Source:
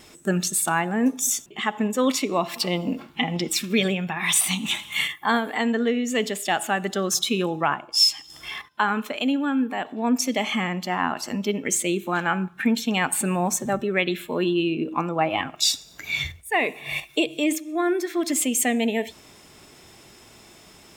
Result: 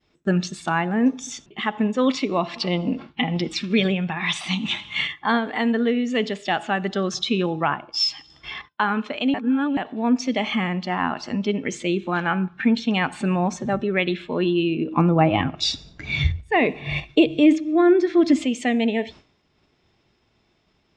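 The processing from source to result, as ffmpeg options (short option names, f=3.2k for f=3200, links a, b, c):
-filter_complex "[0:a]asettb=1/sr,asplit=3[a][b][c];[a]atrim=end=14.974[d];[b]atrim=start=14.97:end=18.45,asetpts=PTS-STARTPTS,afade=t=in:d=0.004:c=qsin,afade=t=out:st=3.476:d=0.004:c=qsin,lowshelf=f=400:g=11.5[e];[c]atrim=start=18.446[f];[d][e]acrossfade=d=0.004:c1=hsin:c2=qsin[g];[g][f]acrossfade=d=0.004:c1=qsin:c2=hsin,asplit=3[h][i][j];[h]atrim=end=9.342[k];[i]atrim=start=9.338:end=9.772,asetpts=PTS-STARTPTS,areverse[l];[j]atrim=start=9.768[m];[k][l]acrossfade=d=0.004:c1=hsin:c2=hsin[n];[n][m]acrossfade=d=0.004:c1=hsin:c2=hsin,agate=range=-33dB:threshold=-38dB:ratio=3:detection=peak,lowpass=f=5k:w=0.5412,lowpass=f=5k:w=1.3066,lowshelf=f=180:g=7"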